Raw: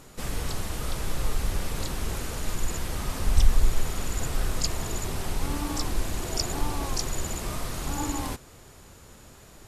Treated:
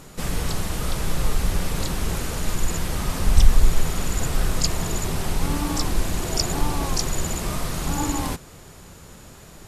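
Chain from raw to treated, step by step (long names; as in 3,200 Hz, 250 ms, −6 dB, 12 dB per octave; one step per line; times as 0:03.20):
parametric band 170 Hz +6.5 dB 0.3 octaves
level +5 dB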